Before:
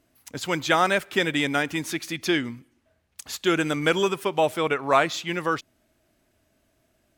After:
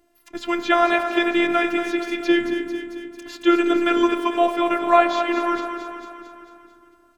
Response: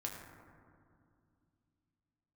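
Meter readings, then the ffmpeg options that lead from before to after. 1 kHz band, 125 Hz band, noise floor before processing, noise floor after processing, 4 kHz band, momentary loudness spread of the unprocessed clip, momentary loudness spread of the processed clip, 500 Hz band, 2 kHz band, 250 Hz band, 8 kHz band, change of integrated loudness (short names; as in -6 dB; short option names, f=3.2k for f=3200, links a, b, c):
+5.0 dB, under -15 dB, -69 dBFS, -57 dBFS, -1.0 dB, 9 LU, 17 LU, +4.0 dB, +1.5 dB, +7.5 dB, n/a, +4.0 dB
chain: -filter_complex "[0:a]aecho=1:1:223|446|669|892|1115|1338|1561:0.316|0.18|0.103|0.0586|0.0334|0.019|0.0108,acrossover=split=4800[a][b];[b]acompressor=threshold=-50dB:ratio=4:attack=1:release=60[c];[a][c]amix=inputs=2:normalize=0,asplit=2[d][e];[1:a]atrim=start_sample=2205,lowpass=2.7k[f];[e][f]afir=irnorm=-1:irlink=0,volume=-3dB[g];[d][g]amix=inputs=2:normalize=0,afftfilt=real='hypot(re,im)*cos(PI*b)':imag='0':win_size=512:overlap=0.75,volume=3.5dB"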